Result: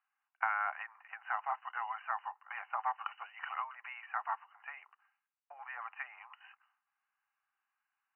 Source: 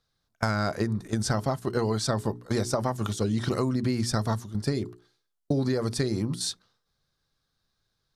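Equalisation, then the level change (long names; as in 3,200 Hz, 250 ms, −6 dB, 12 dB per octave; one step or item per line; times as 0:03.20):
Chebyshev high-pass filter 770 Hz, order 6
linear-phase brick-wall low-pass 3,000 Hz
−1.0 dB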